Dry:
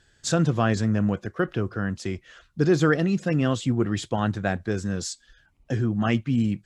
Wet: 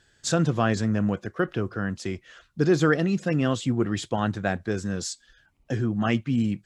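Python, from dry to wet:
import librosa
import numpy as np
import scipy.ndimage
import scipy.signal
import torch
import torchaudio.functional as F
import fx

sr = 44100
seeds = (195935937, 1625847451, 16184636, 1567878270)

y = fx.low_shelf(x, sr, hz=90.0, db=-6.0)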